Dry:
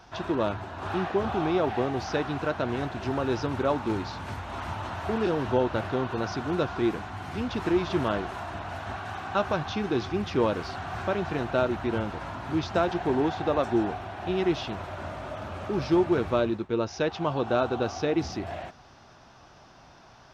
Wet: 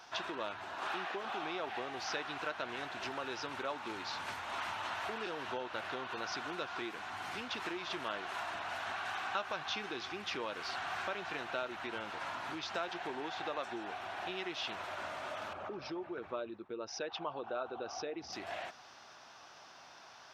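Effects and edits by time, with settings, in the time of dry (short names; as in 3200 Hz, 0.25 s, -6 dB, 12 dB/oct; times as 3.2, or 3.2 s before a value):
0.75–1.43 HPF 170 Hz
15.53–18.33 formant sharpening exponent 1.5
whole clip: dynamic EQ 2500 Hz, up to +4 dB, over -42 dBFS, Q 0.74; compressor 3:1, threshold -34 dBFS; HPF 1200 Hz 6 dB/oct; gain +2 dB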